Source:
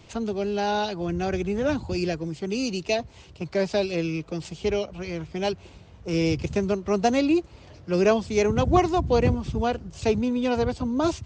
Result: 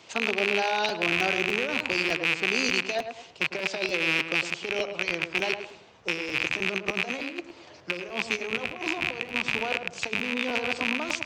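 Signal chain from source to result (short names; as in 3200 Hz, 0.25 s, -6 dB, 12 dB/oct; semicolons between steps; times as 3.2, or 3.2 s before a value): rattling part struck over -33 dBFS, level -15 dBFS; negative-ratio compressor -25 dBFS, ratio -0.5; weighting filter A; tape echo 0.107 s, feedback 38%, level -6.5 dB, low-pass 1500 Hz; crackling interface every 0.30 s, samples 512, repeat, from 0.88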